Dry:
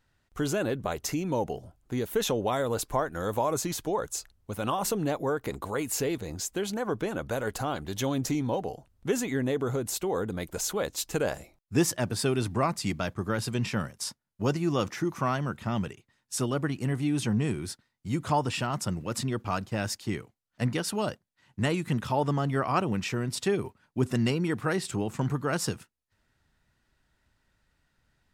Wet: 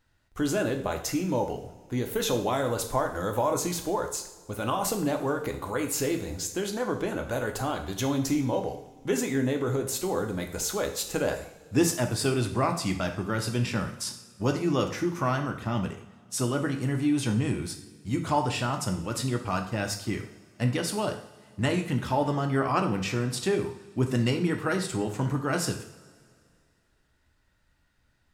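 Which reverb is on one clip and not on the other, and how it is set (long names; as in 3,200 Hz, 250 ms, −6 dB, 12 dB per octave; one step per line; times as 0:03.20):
coupled-rooms reverb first 0.55 s, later 2.3 s, from −18 dB, DRR 4 dB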